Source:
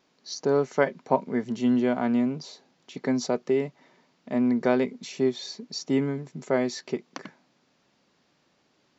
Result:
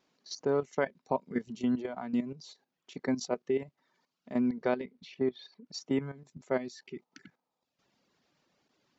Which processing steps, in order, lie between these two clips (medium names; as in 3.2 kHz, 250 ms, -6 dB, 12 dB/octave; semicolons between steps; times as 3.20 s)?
reverb removal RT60 0.86 s; 4.40–5.65 s: low-pass 6.2 kHz -> 3 kHz 24 dB/octave; 6.77–7.62 s: spectral replace 420–1300 Hz before; level held to a coarse grid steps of 12 dB; trim -2.5 dB